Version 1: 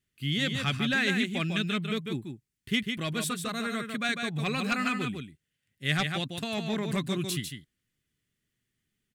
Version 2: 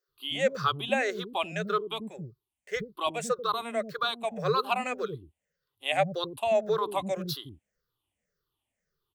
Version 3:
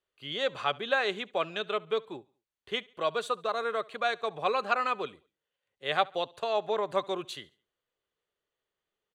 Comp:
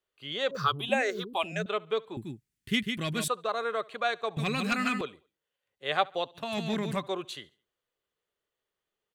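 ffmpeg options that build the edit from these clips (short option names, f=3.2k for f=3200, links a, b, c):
-filter_complex "[0:a]asplit=3[a][b][c];[2:a]asplit=5[d][e][f][g][h];[d]atrim=end=0.512[i];[1:a]atrim=start=0.508:end=1.662[j];[e]atrim=start=1.658:end=2.172[k];[a]atrim=start=2.168:end=3.282[l];[f]atrim=start=3.278:end=4.372[m];[b]atrim=start=4.368:end=5.012[n];[g]atrim=start=5.008:end=6.58[o];[c]atrim=start=6.34:end=7.1[p];[h]atrim=start=6.86[q];[i][j]acrossfade=d=0.004:c1=hsin:c2=hsin[r];[r][k]acrossfade=d=0.004:c1=hsin:c2=hsin[s];[s][l]acrossfade=d=0.004:c1=hsin:c2=hsin[t];[t][m]acrossfade=d=0.004:c1=hsin:c2=hsin[u];[u][n]acrossfade=d=0.004:c1=hsin:c2=hsin[v];[v][o]acrossfade=d=0.004:c1=hsin:c2=hsin[w];[w][p]acrossfade=d=0.24:c1=tri:c2=tri[x];[x][q]acrossfade=d=0.24:c1=tri:c2=tri"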